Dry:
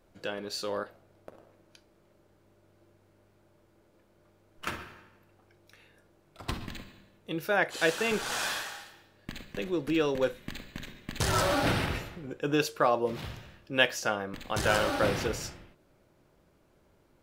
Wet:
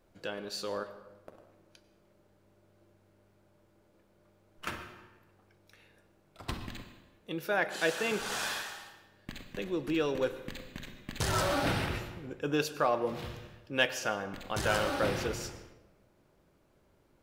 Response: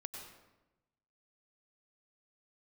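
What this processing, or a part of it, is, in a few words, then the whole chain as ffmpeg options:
saturated reverb return: -filter_complex "[0:a]asettb=1/sr,asplit=3[s0][s1][s2];[s0]atrim=end=6.824[s3];[s1]atrim=start=6.82:end=8.2,asetpts=PTS-STARTPTS,afade=t=in:d=0.004:c=qsin,afade=t=out:st=1.376:d=0.004:c=qsin,highpass=120[s4];[s2]atrim=start=8.196[s5];[s3][s4]acrossfade=d=0.004:c1=hsin:c2=qsin[s6];[s6][s5]acrossfade=d=0.004:c1=qsin:c2=hsin,asplit=2[s7][s8];[1:a]atrim=start_sample=2205[s9];[s8][s9]afir=irnorm=-1:irlink=0,asoftclip=type=tanh:threshold=0.0708,volume=0.668[s10];[s7][s10]amix=inputs=2:normalize=0,volume=0.531"

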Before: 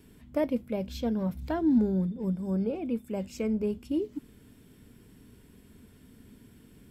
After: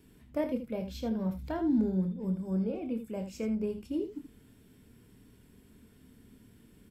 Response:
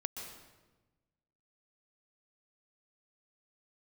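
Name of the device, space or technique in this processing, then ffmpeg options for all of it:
slapback doubling: -filter_complex "[0:a]asplit=3[s0][s1][s2];[s1]adelay=27,volume=0.398[s3];[s2]adelay=79,volume=0.316[s4];[s0][s3][s4]amix=inputs=3:normalize=0,volume=0.596"

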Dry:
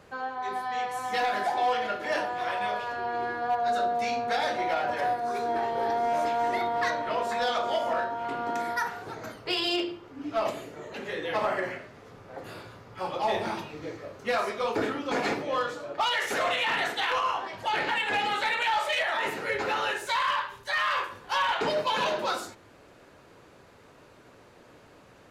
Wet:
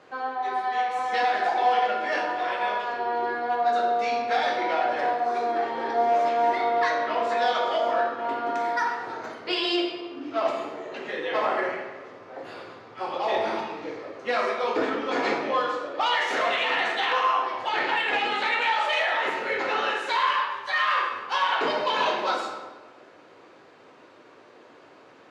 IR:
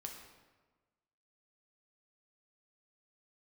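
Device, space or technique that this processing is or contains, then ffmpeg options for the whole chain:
supermarket ceiling speaker: -filter_complex "[0:a]highpass=260,lowpass=5100[s0];[1:a]atrim=start_sample=2205[s1];[s0][s1]afir=irnorm=-1:irlink=0,volume=2.11"

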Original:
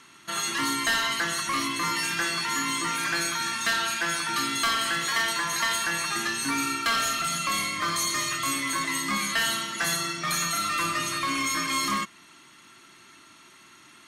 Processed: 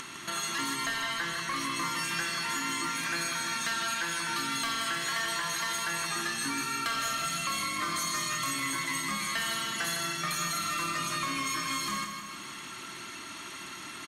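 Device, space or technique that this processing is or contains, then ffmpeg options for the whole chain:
upward and downward compression: -filter_complex "[0:a]acompressor=mode=upward:threshold=0.0282:ratio=2.5,acompressor=threshold=0.0355:ratio=6,asettb=1/sr,asplit=3[s0][s1][s2];[s0]atrim=end=0.864[s3];[s1]atrim=start=0.86:end=1.56,asetpts=PTS-STARTPTS,afade=t=in:d=0.004:c=qsin,afade=t=out:st=0.696:d=0.004:c=qsin,acrossover=split=3800[s4][s5];[s5]acompressor=threshold=0.00891:ratio=4:attack=1:release=60[s6];[s4][s6]amix=inputs=2:normalize=0[s7];[s2]atrim=start=1.556[s8];[s3][s7]acrossfade=d=0.004:c1=hsin:c2=qsin[s9];[s9][s8]acrossfade=d=0.004:c1=qsin:c2=hsin,aecho=1:1:157|314|471|628|785|942|1099|1256:0.473|0.284|0.17|0.102|0.0613|0.0368|0.0221|0.0132,volume=0.841"

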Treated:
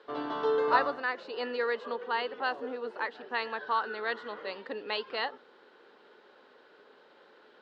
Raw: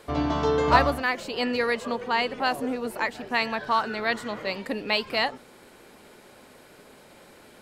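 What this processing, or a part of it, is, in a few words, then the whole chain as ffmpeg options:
phone earpiece: -filter_complex "[0:a]asettb=1/sr,asplit=3[s0][s1][s2];[s0]atrim=end=0.594[s3];[s1]atrim=start=0.59:end=1.45,asetpts=PTS-STARTPTS,afade=t=in:d=0.004:c=qsin,afade=t=out:st=0.856:d=0.004:c=qsin,bandreject=f=3200:w=8.8[s4];[s2]atrim=start=1.446[s5];[s3][s4]acrossfade=d=0.004:c1=hsin:c2=qsin[s6];[s6][s5]acrossfade=d=0.004:c1=qsin:c2=hsin,highpass=410,equalizer=f=440:t=q:w=4:g=5,equalizer=f=660:t=q:w=4:g=-6,equalizer=f=1500:t=q:w=4:g=3,equalizer=f=2300:t=q:w=4:g=-10,lowpass=f=3900:w=0.5412,lowpass=f=3900:w=1.3066,volume=0.562"

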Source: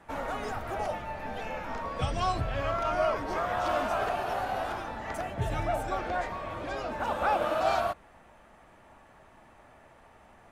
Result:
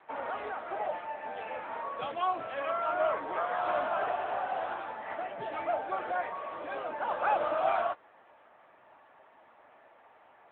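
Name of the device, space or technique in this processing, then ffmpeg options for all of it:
telephone: -af "highpass=390,lowpass=3400" -ar 8000 -c:a libopencore_amrnb -b:a 10200

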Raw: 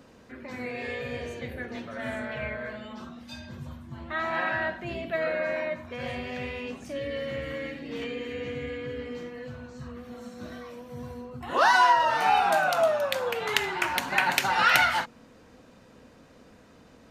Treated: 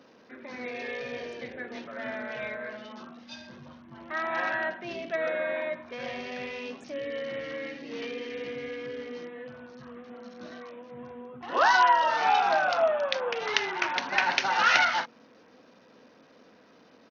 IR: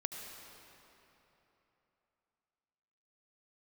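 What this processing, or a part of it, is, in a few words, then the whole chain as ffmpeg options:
Bluetooth headset: -af "highpass=240,aresample=16000,aresample=44100,volume=0.891" -ar 48000 -c:a sbc -b:a 64k

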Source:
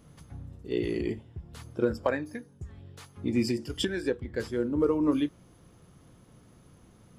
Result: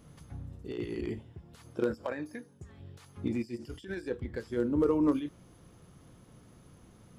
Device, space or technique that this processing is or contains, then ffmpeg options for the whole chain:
de-esser from a sidechain: -filter_complex "[0:a]asplit=2[s0][s1];[s1]highpass=5800,apad=whole_len=316994[s2];[s0][s2]sidechaincompress=threshold=0.00141:ratio=20:attack=0.55:release=47,asettb=1/sr,asplit=3[s3][s4][s5];[s3]atrim=end=1.334[s6];[s4]atrim=start=1.33:end=2.8,asetpts=PTS-STARTPTS,afade=t=in:d=0.004:c=qsin,afade=t=out:st=1.466:d=0.004:c=qsin,highpass=f=190:p=1[s7];[s5]atrim=start=2.796[s8];[s6][s7]acrossfade=d=0.004:c1=hsin:c2=qsin[s9];[s9][s8]acrossfade=d=0.004:c1=qsin:c2=hsin"

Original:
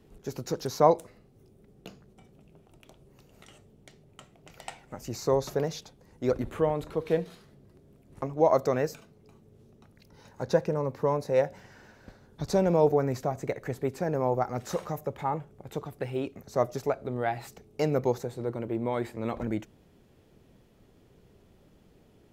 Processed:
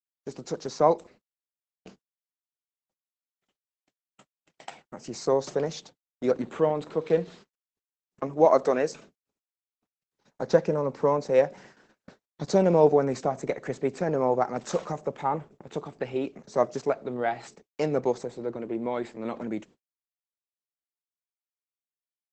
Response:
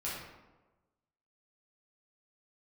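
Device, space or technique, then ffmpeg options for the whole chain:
video call: -filter_complex "[0:a]asettb=1/sr,asplit=3[s0][s1][s2];[s0]atrim=end=8.454[s3];[s1]atrim=start=8.45:end=8.92,asetpts=PTS-STARTPTS,afade=t=in:d=0.004:c=qsin,afade=t=out:st=0.466:d=0.004:c=qsin,highpass=190[s4];[s2]atrim=start=8.916[s5];[s3][s4]acrossfade=d=0.004:c1=hsin:c2=qsin[s6];[s6][s5]acrossfade=d=0.004:c1=qsin:c2=hsin,highpass=f=160:w=0.5412,highpass=f=160:w=1.3066,dynaudnorm=f=360:g=31:m=1.58,agate=range=0.001:threshold=0.00398:ratio=16:detection=peak" -ar 48000 -c:a libopus -b:a 12k

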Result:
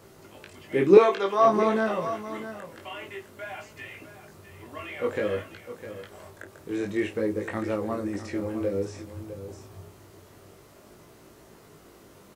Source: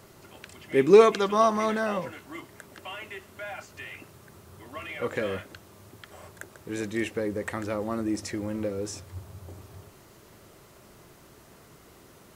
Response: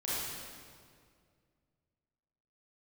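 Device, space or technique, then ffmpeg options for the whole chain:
double-tracked vocal: -filter_complex "[0:a]asplit=2[s0][s1];[s1]adelay=31,volume=0.237[s2];[s0][s2]amix=inputs=2:normalize=0,flanger=delay=18:depth=3.2:speed=0.53,asettb=1/sr,asplit=3[s3][s4][s5];[s3]atrim=end=0.974[s6];[s4]atrim=start=0.97:end=1.45,asetpts=PTS-STARTPTS,afade=t=in:d=0.004:c=qsin,afade=t=out:st=0.476:d=0.004:c=qsin,highpass=420[s7];[s5]atrim=start=1.446[s8];[s6][s7]acrossfade=d=0.004:c1=hsin:c2=qsin[s9];[s9][s8]acrossfade=d=0.004:c1=qsin:c2=hsin,aecho=1:1:655:0.237,acrossover=split=4000[s10][s11];[s11]acompressor=threshold=0.00224:ratio=4:attack=1:release=60[s12];[s10][s12]amix=inputs=2:normalize=0,equalizer=f=400:t=o:w=1.7:g=4,volume=1.19"

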